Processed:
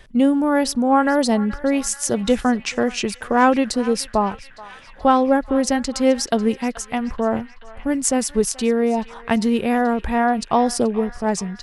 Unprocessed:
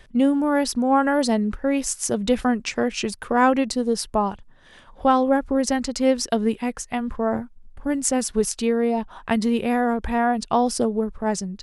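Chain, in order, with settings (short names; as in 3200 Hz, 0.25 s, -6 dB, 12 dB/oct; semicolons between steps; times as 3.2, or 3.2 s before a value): narrowing echo 0.43 s, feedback 78%, band-pass 2200 Hz, level -14.5 dB; gain +2.5 dB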